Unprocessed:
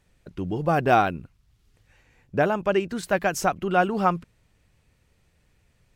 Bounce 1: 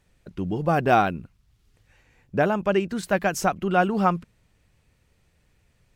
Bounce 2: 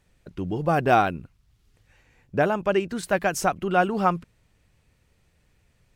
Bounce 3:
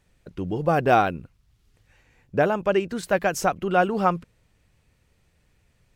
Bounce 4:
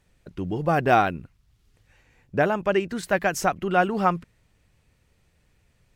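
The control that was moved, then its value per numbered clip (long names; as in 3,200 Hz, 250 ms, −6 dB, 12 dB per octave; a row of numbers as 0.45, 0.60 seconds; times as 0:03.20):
dynamic equaliser, frequency: 200, 9,200, 500, 1,900 Hertz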